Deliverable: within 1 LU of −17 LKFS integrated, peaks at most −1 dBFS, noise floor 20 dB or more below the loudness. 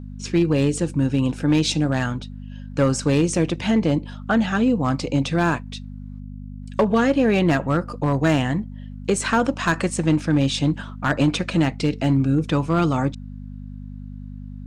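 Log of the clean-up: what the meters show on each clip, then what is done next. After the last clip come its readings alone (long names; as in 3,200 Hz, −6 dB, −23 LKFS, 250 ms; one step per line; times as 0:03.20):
share of clipped samples 0.7%; peaks flattened at −11.0 dBFS; mains hum 50 Hz; hum harmonics up to 250 Hz; level of the hum −33 dBFS; integrated loudness −21.0 LKFS; sample peak −11.0 dBFS; target loudness −17.0 LKFS
→ clipped peaks rebuilt −11 dBFS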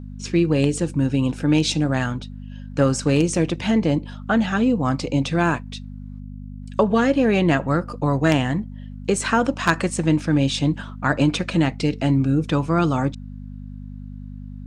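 share of clipped samples 0.0%; mains hum 50 Hz; hum harmonics up to 250 Hz; level of the hum −33 dBFS
→ hum removal 50 Hz, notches 5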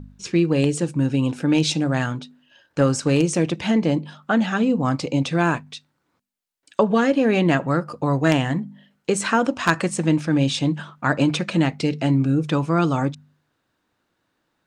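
mains hum none found; integrated loudness −21.0 LKFS; sample peak −1.5 dBFS; target loudness −17.0 LKFS
→ level +4 dB
brickwall limiter −1 dBFS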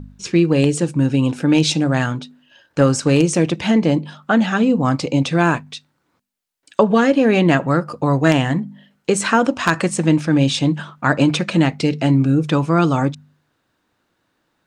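integrated loudness −17.0 LKFS; sample peak −1.0 dBFS; background noise floor −69 dBFS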